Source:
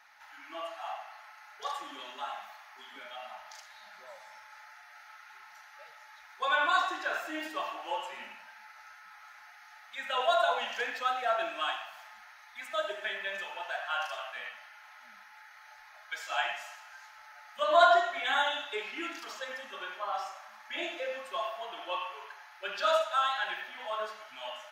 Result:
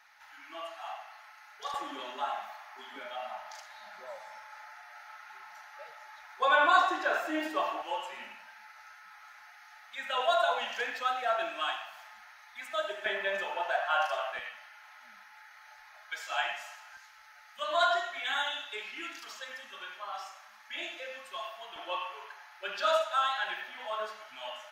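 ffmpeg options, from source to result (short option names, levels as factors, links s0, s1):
-af "asetnsamples=n=441:p=0,asendcmd='1.74 equalizer g 7;7.82 equalizer g -0.5;13.06 equalizer g 9.5;14.39 equalizer g -1;16.97 equalizer g -8.5;21.76 equalizer g -0.5',equalizer=f=440:t=o:w=2.9:g=-3"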